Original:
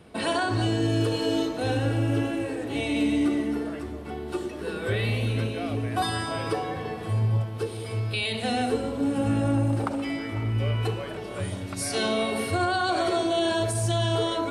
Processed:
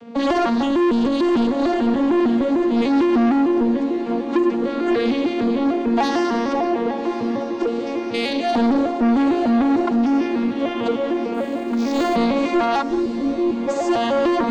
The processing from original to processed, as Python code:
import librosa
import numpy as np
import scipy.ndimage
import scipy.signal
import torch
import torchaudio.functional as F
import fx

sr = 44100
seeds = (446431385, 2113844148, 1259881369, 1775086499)

y = fx.vocoder_arp(x, sr, chord='minor triad', root=58, every_ms=150)
y = 10.0 ** (-27.0 / 20.0) * np.tanh(y / 10.0 ** (-27.0 / 20.0))
y = fx.cheby2_bandstop(y, sr, low_hz=1600.0, high_hz=4900.0, order=4, stop_db=80, at=(12.81, 13.67), fade=0.02)
y = y + 10.0 ** (-15.0 / 20.0) * np.pad(y, (int(180 * sr / 1000.0), 0))[:len(y)]
y = fx.fold_sine(y, sr, drive_db=5, ceiling_db=-19.5)
y = fx.echo_diffused(y, sr, ms=1165, feedback_pct=67, wet_db=-13.0)
y = fx.resample_linear(y, sr, factor=4, at=(11.34, 12.16))
y = F.gain(torch.from_numpy(y), 5.5).numpy()